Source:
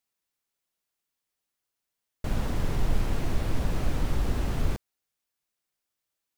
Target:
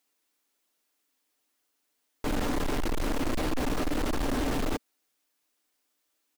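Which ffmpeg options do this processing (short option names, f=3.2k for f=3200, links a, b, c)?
-af "lowshelf=f=200:t=q:w=3:g=-7,aecho=1:1:6.7:0.35,asoftclip=type=hard:threshold=-33dB,volume=7.5dB"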